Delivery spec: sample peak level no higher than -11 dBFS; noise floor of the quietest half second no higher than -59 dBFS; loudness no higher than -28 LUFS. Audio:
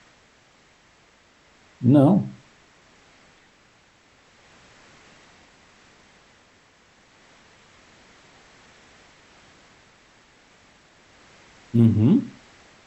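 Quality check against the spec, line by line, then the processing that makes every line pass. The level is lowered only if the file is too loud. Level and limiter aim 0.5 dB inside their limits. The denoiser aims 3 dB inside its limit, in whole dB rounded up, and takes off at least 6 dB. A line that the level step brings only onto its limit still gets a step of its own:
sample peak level -5.0 dBFS: fail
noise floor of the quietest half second -57 dBFS: fail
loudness -19.5 LUFS: fail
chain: trim -9 dB

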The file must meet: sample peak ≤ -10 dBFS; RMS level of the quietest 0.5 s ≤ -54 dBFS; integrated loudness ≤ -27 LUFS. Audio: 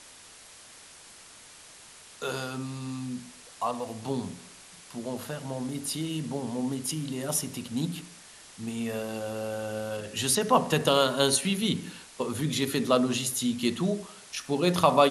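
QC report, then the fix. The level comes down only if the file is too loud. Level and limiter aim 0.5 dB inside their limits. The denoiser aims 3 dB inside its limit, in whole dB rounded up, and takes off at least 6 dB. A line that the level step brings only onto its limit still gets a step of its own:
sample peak -6.5 dBFS: fail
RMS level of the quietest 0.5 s -51 dBFS: fail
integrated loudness -29.0 LUFS: pass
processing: noise reduction 6 dB, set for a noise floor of -51 dBFS; peak limiter -10.5 dBFS

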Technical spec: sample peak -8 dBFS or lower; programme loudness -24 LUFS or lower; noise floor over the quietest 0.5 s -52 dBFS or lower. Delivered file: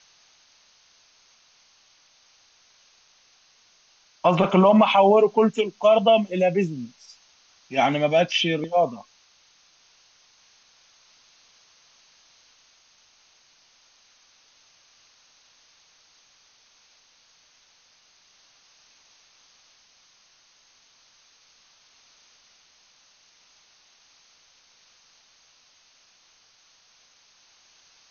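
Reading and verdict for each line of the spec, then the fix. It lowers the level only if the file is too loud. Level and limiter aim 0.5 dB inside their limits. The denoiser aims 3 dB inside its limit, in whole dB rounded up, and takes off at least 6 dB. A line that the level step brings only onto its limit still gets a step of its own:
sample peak -6.0 dBFS: fail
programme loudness -20.0 LUFS: fail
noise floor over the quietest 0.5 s -60 dBFS: pass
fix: trim -4.5 dB

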